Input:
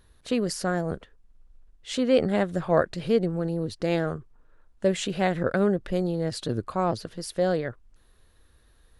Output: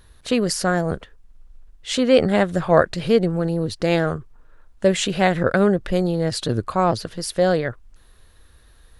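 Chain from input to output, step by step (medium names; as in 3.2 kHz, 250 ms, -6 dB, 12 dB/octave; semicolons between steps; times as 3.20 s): peaking EQ 300 Hz -3.5 dB 2.2 oct; trim +8.5 dB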